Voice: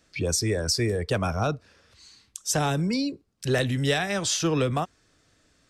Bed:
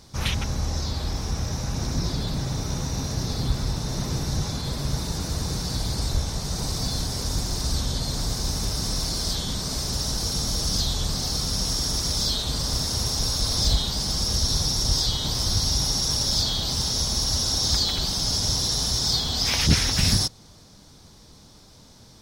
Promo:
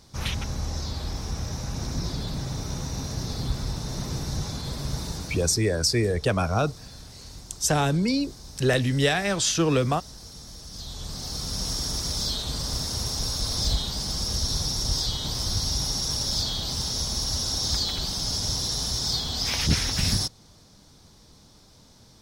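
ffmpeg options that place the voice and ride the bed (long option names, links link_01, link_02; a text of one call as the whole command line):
ffmpeg -i stem1.wav -i stem2.wav -filter_complex "[0:a]adelay=5150,volume=2dB[link_01];[1:a]volume=10dB,afade=type=out:start_time=5.08:duration=0.55:silence=0.211349,afade=type=in:start_time=10.7:duration=0.98:silence=0.211349[link_02];[link_01][link_02]amix=inputs=2:normalize=0" out.wav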